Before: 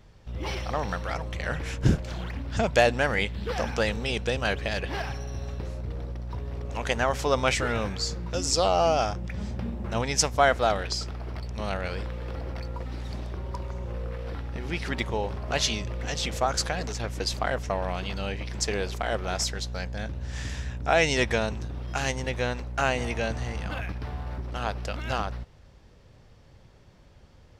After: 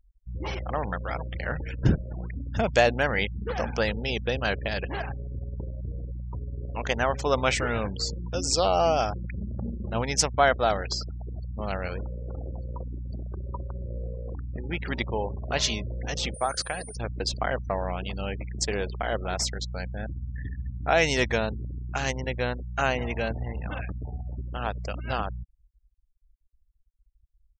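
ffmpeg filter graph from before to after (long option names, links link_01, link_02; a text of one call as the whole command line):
ffmpeg -i in.wav -filter_complex "[0:a]asettb=1/sr,asplit=3[link_01][link_02][link_03];[link_01]atrim=end=16.344[link_04];[link_02]atrim=start=16.34:end=16.96,asetpts=PTS-STARTPTS,afade=type=in:duration=0.004:curve=qsin,afade=type=out:start_time=0.616:duration=0.004:curve=qsin,acrossover=split=6400[link_05][link_06];[link_06]acompressor=threshold=-47dB:ratio=4:attack=1:release=60[link_07];[link_05][link_07]amix=inputs=2:normalize=0,lowshelf=frequency=400:gain=-7.5,aeval=exprs='val(0)+0.0112*sin(2*PI*9300*n/s)':channel_layout=same[link_08];[link_03]atrim=start=16.956[link_09];[link_04][link_08]acrossfade=duration=0.004:curve1=hsin:curve2=qsin[link_10];[link_10][link_09]acrossfade=duration=0.004:curve1=qsin:curve2=hsin,anlmdn=6.31,afftfilt=real='re*gte(hypot(re,im),0.0126)':imag='im*gte(hypot(re,im),0.0126)':win_size=1024:overlap=0.75" out.wav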